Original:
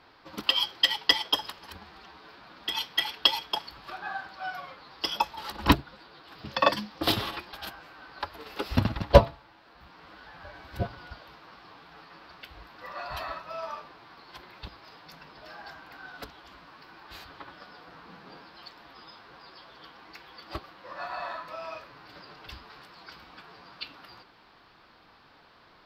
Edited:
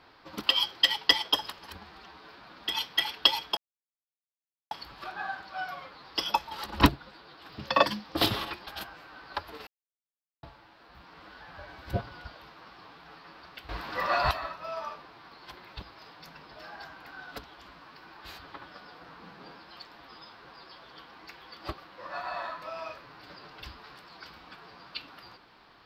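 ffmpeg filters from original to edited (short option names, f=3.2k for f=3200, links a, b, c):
-filter_complex "[0:a]asplit=6[a][b][c][d][e][f];[a]atrim=end=3.57,asetpts=PTS-STARTPTS,afade=t=out:st=3.566:d=0.004:c=hsin,apad=pad_dur=1.14[g];[b]atrim=start=3.57:end=8.53,asetpts=PTS-STARTPTS,afade=t=in:d=0.004:c=hsin,afade=t=out:st=4.956:d=0.004:c=hsin[h];[c]atrim=start=8.53:end=9.29,asetpts=PTS-STARTPTS,volume=0[i];[d]atrim=start=9.29:end=12.552,asetpts=PTS-STARTPTS,afade=t=in:d=0.004:c=hsin[j];[e]atrim=start=12.548:end=13.172,asetpts=PTS-STARTPTS,volume=11.5dB[k];[f]atrim=start=13.168[l];[g][h][i][j]concat=n=4:v=0:a=1[m];[m][k]acrossfade=d=0.004:c1=hsin:c2=hsin[n];[n][l]acrossfade=d=0.004:c1=hsin:c2=hsin"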